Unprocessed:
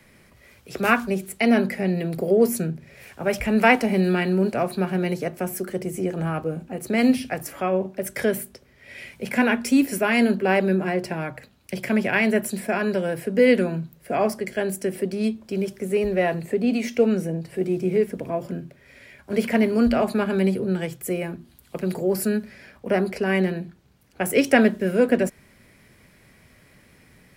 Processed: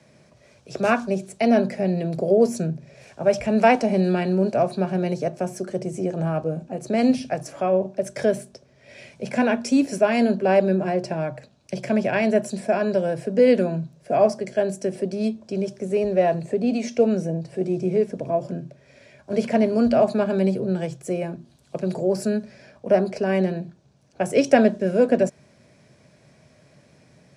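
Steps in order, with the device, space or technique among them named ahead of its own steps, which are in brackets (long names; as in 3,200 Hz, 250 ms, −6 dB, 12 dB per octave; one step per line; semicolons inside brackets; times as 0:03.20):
car door speaker (loudspeaker in its box 91–8,400 Hz, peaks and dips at 140 Hz +7 dB, 620 Hz +9 dB, 1,300 Hz −4 dB, 2,000 Hz −8 dB, 3,000 Hz −4 dB, 5,900 Hz +4 dB)
level −1 dB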